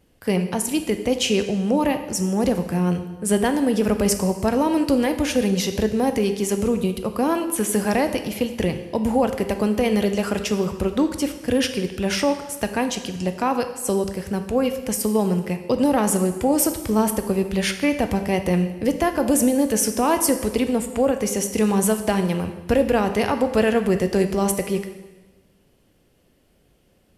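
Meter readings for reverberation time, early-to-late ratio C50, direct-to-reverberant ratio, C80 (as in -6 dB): 1.2 s, 9.5 dB, 7.5 dB, 11.5 dB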